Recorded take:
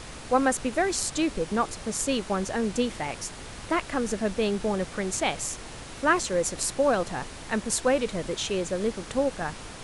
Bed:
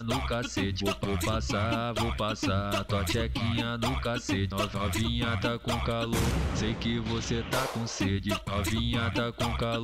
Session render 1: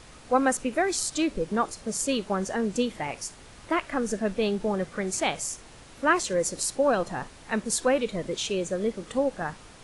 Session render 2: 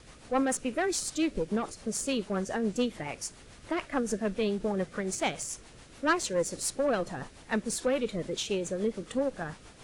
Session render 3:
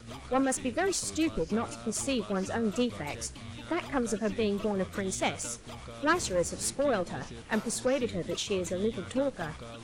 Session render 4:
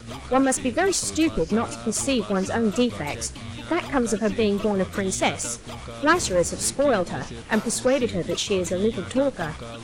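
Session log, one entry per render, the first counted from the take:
noise reduction from a noise print 8 dB
tube saturation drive 17 dB, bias 0.3; rotating-speaker cabinet horn 7 Hz
mix in bed −15 dB
level +7.5 dB

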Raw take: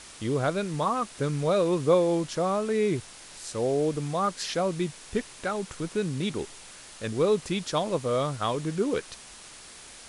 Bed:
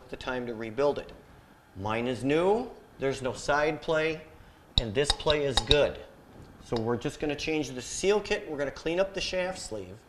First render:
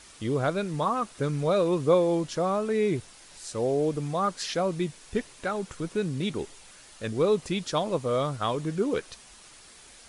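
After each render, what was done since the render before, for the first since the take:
broadband denoise 6 dB, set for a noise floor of −47 dBFS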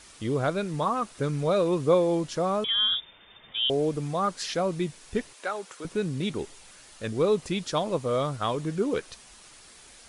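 0:02.64–0:03.70: voice inversion scrambler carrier 3,600 Hz
0:05.33–0:05.85: high-pass filter 460 Hz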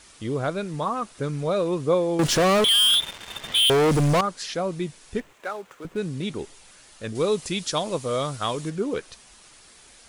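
0:02.19–0:04.21: leveller curve on the samples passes 5
0:05.19–0:05.98: running median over 9 samples
0:07.15–0:08.70: high-shelf EQ 2,900 Hz +9.5 dB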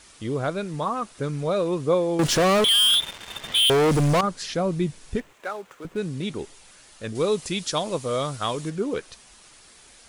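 0:04.23–0:05.16: low-shelf EQ 240 Hz +9.5 dB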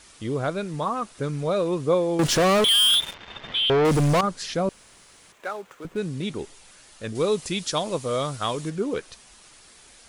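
0:03.14–0:03.85: high-frequency loss of the air 200 metres
0:04.69–0:05.32: fill with room tone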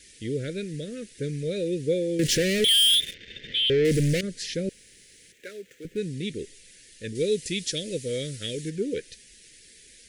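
elliptic band-stop filter 490–1,800 Hz, stop band 50 dB
low-shelf EQ 360 Hz −2.5 dB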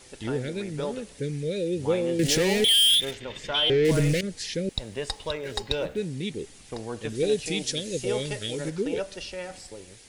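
mix in bed −6 dB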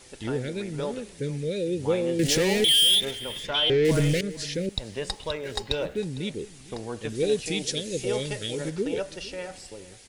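single-tap delay 455 ms −19 dB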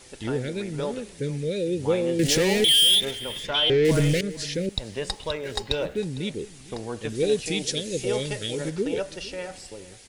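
level +1.5 dB

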